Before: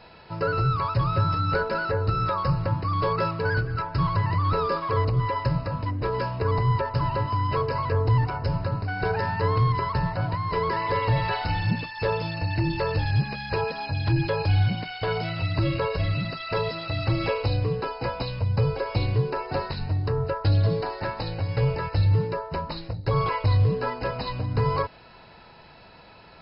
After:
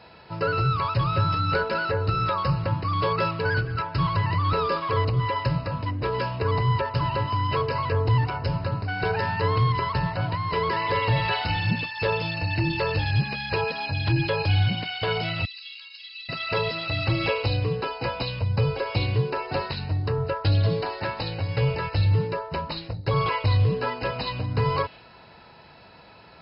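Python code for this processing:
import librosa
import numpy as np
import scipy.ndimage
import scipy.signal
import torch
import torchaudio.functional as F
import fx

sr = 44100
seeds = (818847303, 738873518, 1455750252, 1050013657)

y = fx.ladder_highpass(x, sr, hz=2700.0, resonance_pct=35, at=(15.45, 16.29))
y = scipy.signal.sosfilt(scipy.signal.butter(2, 54.0, 'highpass', fs=sr, output='sos'), y)
y = fx.dynamic_eq(y, sr, hz=3000.0, q=1.5, threshold_db=-51.0, ratio=4.0, max_db=8)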